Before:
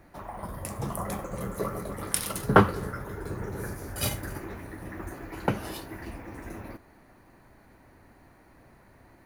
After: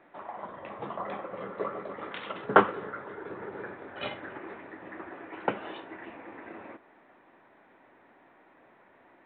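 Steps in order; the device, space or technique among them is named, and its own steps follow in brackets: telephone (band-pass 340–3500 Hz; µ-law 64 kbps 8 kHz)

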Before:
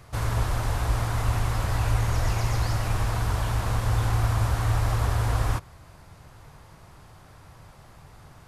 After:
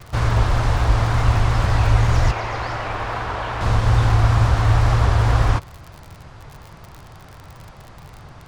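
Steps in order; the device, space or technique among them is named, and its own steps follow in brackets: lo-fi chain (low-pass 5.4 kHz 12 dB/octave; wow and flutter; crackle 50 per s -37 dBFS); 2.31–3.61 s: tone controls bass -14 dB, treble -11 dB; trim +8 dB

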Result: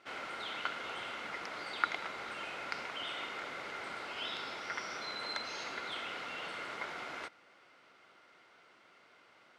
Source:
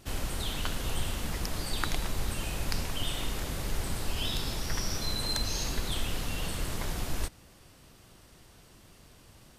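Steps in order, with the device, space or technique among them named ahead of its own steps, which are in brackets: tin-can telephone (band-pass 470–3100 Hz; small resonant body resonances 1.4/2.1 kHz, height 11 dB, ringing for 20 ms); trim -2.5 dB

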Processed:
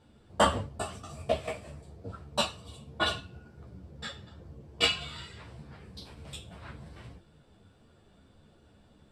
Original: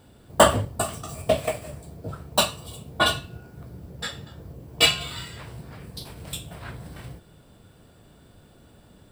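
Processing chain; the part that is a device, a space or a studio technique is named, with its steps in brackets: string-machine ensemble chorus (three-phase chorus; low-pass 6.6 kHz 12 dB/octave); trim -4 dB

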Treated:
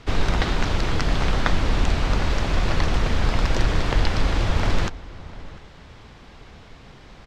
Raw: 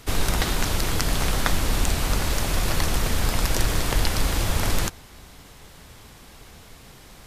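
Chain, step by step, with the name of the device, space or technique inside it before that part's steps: shout across a valley (distance through air 160 m; echo from a far wall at 120 m, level -18 dB); trim +2.5 dB

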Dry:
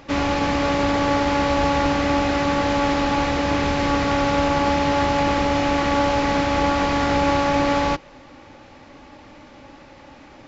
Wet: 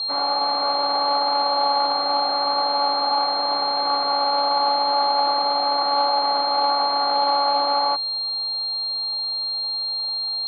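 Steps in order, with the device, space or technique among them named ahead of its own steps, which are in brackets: toy sound module (decimation joined by straight lines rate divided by 8×; class-D stage that switches slowly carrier 4.2 kHz; cabinet simulation 730–4700 Hz, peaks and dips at 770 Hz +9 dB, 1.2 kHz +4 dB, 1.8 kHz -10 dB, 2.7 kHz -7 dB, 4.2 kHz +8 dB)

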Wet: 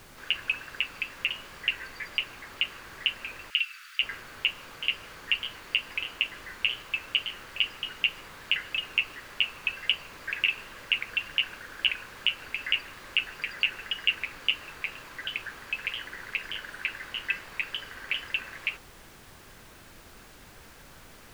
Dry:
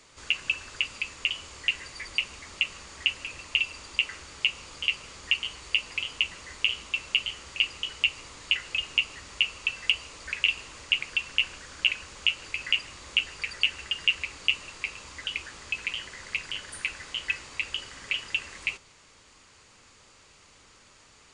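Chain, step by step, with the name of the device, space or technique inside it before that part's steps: horn gramophone (band-pass 280–3200 Hz; peaking EQ 1.6 kHz +9 dB 0.31 oct; wow and flutter; pink noise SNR 18 dB); 3.50–4.02 s: elliptic high-pass 1.3 kHz, stop band 40 dB

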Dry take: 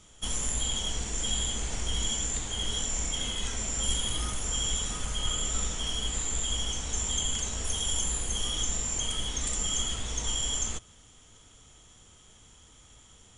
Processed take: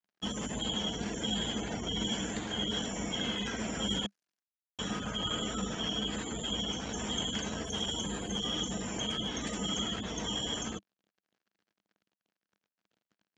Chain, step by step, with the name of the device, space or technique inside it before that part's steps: 4.06–4.79 s: inverse Chebyshev high-pass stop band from 2.7 kHz, stop band 80 dB; spectral gate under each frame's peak -30 dB strong; blown loudspeaker (crossover distortion -47 dBFS; cabinet simulation 120–5000 Hz, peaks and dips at 200 Hz +10 dB, 310 Hz +6 dB, 460 Hz +3 dB, 670 Hz +4 dB, 1.6 kHz +6 dB, 3.6 kHz -5 dB); trim +2.5 dB

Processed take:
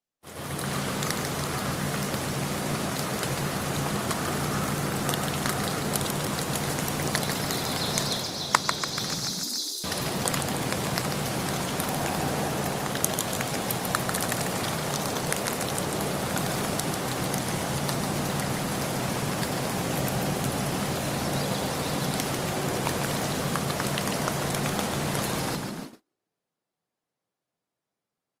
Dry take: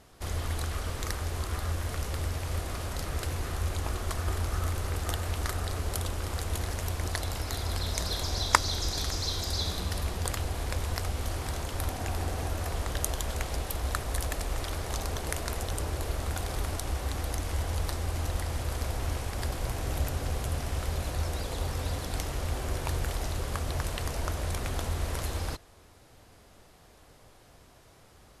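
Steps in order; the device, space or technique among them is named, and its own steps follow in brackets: 9.14–9.84 s: inverse Chebyshev high-pass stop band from 820 Hz, stop band 80 dB; frequency-shifting echo 144 ms, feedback 53%, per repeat +59 Hz, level -6.5 dB; video call (high-pass 140 Hz 24 dB/octave; level rider gain up to 7 dB; gate -38 dBFS, range -37 dB; Opus 32 kbps 48 kHz)

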